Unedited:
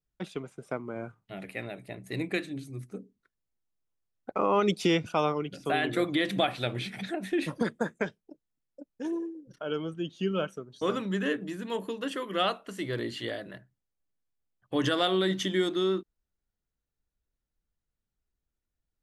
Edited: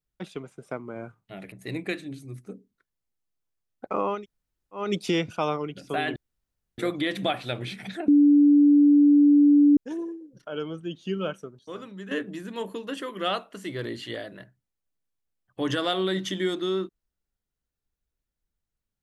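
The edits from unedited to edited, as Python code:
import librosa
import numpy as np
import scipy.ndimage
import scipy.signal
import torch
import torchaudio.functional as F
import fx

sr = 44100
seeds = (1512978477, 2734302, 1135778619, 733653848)

y = fx.edit(x, sr, fx.cut(start_s=1.52, length_s=0.45),
    fx.insert_room_tone(at_s=4.59, length_s=0.69, crossfade_s=0.24),
    fx.insert_room_tone(at_s=5.92, length_s=0.62),
    fx.bleep(start_s=7.22, length_s=1.69, hz=290.0, db=-13.0),
    fx.clip_gain(start_s=10.73, length_s=0.52, db=-9.5), tone=tone)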